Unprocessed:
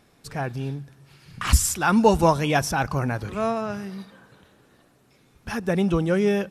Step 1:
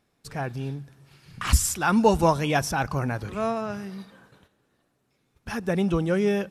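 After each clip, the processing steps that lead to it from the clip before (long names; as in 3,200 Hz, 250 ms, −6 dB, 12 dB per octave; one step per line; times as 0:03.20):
noise gate −53 dBFS, range −10 dB
level −2 dB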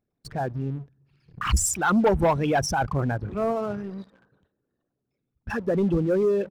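spectral envelope exaggerated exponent 2
leveller curve on the samples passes 2
level −5.5 dB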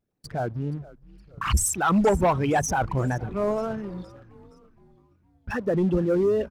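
echo with shifted repeats 468 ms, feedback 49%, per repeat −95 Hz, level −20 dB
tape wow and flutter 130 cents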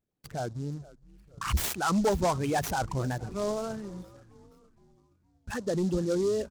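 short delay modulated by noise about 5,300 Hz, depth 0.036 ms
level −5.5 dB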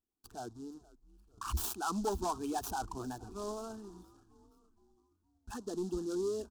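phaser with its sweep stopped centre 550 Hz, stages 6
level −5 dB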